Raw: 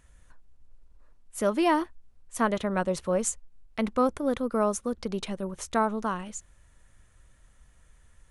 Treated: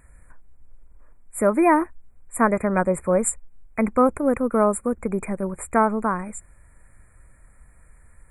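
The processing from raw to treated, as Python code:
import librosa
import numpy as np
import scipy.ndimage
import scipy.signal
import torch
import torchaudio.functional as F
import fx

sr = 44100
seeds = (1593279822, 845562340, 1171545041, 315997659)

y = fx.brickwall_bandstop(x, sr, low_hz=2500.0, high_hz=7100.0)
y = F.gain(torch.from_numpy(y), 6.5).numpy()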